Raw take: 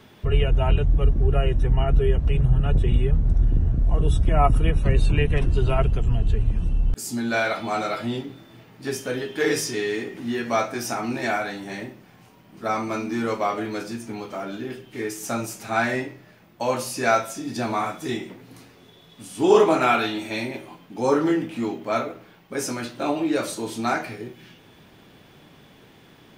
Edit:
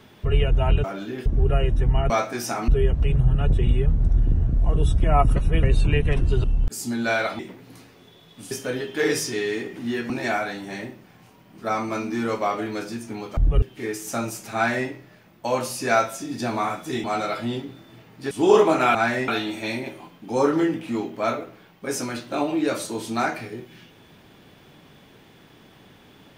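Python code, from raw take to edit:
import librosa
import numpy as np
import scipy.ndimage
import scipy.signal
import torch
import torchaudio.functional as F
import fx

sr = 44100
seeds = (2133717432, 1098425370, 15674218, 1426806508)

y = fx.edit(x, sr, fx.swap(start_s=0.84, length_s=0.25, other_s=14.36, other_length_s=0.42),
    fx.reverse_span(start_s=4.61, length_s=0.27),
    fx.cut(start_s=5.69, length_s=1.01),
    fx.swap(start_s=7.65, length_s=1.27, other_s=18.2, other_length_s=1.12),
    fx.move(start_s=10.51, length_s=0.58, to_s=1.93),
    fx.duplicate(start_s=15.71, length_s=0.33, to_s=19.96), tone=tone)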